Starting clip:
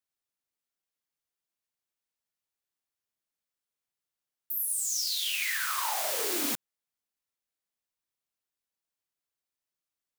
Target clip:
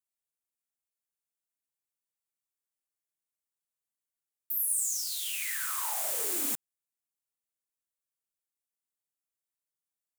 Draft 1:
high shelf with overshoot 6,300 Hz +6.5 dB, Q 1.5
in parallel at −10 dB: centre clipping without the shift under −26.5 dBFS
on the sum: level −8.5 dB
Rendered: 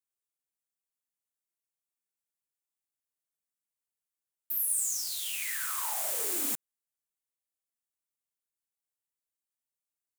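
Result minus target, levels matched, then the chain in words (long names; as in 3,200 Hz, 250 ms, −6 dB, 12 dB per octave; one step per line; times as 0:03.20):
centre clipping without the shift: distortion +9 dB
high shelf with overshoot 6,300 Hz +6.5 dB, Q 1.5
in parallel at −10 dB: centre clipping without the shift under −32.5 dBFS
on the sum: level −8.5 dB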